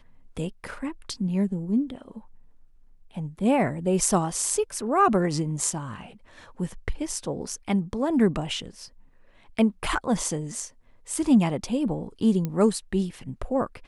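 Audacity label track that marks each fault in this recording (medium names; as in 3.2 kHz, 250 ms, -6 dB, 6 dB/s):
12.450000	12.450000	pop -16 dBFS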